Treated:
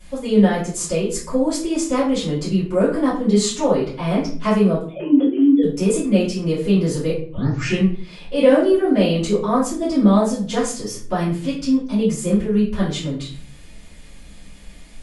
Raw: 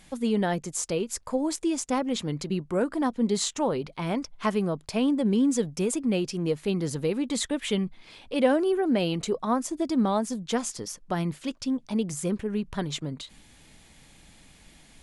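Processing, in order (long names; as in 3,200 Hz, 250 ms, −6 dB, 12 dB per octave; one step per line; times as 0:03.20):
0:04.83–0:05.63: three sine waves on the formant tracks
0:07.10: tape start 0.72 s
rectangular room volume 42 cubic metres, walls mixed, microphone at 2.6 metres
level −6 dB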